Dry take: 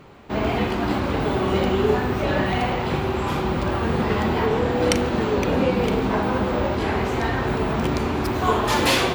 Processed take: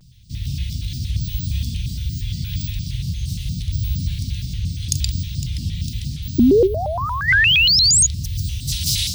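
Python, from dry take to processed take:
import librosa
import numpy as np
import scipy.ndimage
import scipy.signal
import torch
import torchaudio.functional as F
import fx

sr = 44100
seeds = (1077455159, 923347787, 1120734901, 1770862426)

p1 = scipy.signal.sosfilt(scipy.signal.ellip(3, 1.0, 60, [120.0, 4300.0], 'bandstop', fs=sr, output='sos'), x)
p2 = p1 + fx.echo_single(p1, sr, ms=128, db=-4.5, dry=0)
p3 = fx.spec_paint(p2, sr, seeds[0], shape='rise', start_s=6.39, length_s=1.68, low_hz=260.0, high_hz=8200.0, level_db=-16.0)
p4 = fx.rider(p3, sr, range_db=4, speed_s=0.5)
p5 = p3 + F.gain(torch.from_numpy(p4), 0.5).numpy()
p6 = fx.spec_box(p5, sr, start_s=6.67, length_s=0.61, low_hz=450.0, high_hz=11000.0, gain_db=-11)
p7 = fx.vibrato_shape(p6, sr, shape='square', rate_hz=4.3, depth_cents=250.0)
y = F.gain(torch.from_numpy(p7), -2.5).numpy()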